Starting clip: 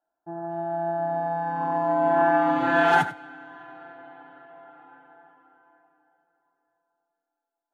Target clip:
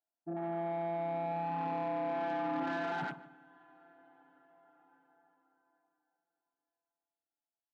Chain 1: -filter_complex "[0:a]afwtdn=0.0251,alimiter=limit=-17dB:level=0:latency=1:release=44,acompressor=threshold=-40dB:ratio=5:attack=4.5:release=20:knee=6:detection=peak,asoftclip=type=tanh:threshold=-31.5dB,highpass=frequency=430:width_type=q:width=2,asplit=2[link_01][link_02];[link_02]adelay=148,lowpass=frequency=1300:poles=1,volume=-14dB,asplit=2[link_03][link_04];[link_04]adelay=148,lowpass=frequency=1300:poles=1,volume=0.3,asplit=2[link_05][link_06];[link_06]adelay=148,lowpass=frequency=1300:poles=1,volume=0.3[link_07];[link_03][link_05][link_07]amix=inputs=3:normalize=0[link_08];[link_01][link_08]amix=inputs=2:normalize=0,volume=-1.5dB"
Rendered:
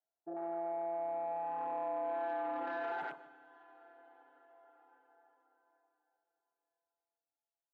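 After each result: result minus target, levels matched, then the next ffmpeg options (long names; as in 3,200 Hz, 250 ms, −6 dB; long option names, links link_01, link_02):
250 Hz band −6.5 dB; downward compressor: peak gain reduction +6 dB
-filter_complex "[0:a]afwtdn=0.0251,alimiter=limit=-17dB:level=0:latency=1:release=44,acompressor=threshold=-40dB:ratio=5:attack=4.5:release=20:knee=6:detection=peak,asoftclip=type=tanh:threshold=-31.5dB,highpass=frequency=200:width_type=q:width=2,asplit=2[link_01][link_02];[link_02]adelay=148,lowpass=frequency=1300:poles=1,volume=-14dB,asplit=2[link_03][link_04];[link_04]adelay=148,lowpass=frequency=1300:poles=1,volume=0.3,asplit=2[link_05][link_06];[link_06]adelay=148,lowpass=frequency=1300:poles=1,volume=0.3[link_07];[link_03][link_05][link_07]amix=inputs=3:normalize=0[link_08];[link_01][link_08]amix=inputs=2:normalize=0,volume=-1.5dB"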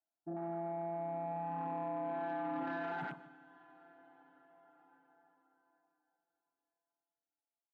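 downward compressor: peak gain reduction +6 dB
-filter_complex "[0:a]afwtdn=0.0251,alimiter=limit=-17dB:level=0:latency=1:release=44,acompressor=threshold=-32.5dB:ratio=5:attack=4.5:release=20:knee=6:detection=peak,asoftclip=type=tanh:threshold=-31.5dB,highpass=frequency=200:width_type=q:width=2,asplit=2[link_01][link_02];[link_02]adelay=148,lowpass=frequency=1300:poles=1,volume=-14dB,asplit=2[link_03][link_04];[link_04]adelay=148,lowpass=frequency=1300:poles=1,volume=0.3,asplit=2[link_05][link_06];[link_06]adelay=148,lowpass=frequency=1300:poles=1,volume=0.3[link_07];[link_03][link_05][link_07]amix=inputs=3:normalize=0[link_08];[link_01][link_08]amix=inputs=2:normalize=0,volume=-1.5dB"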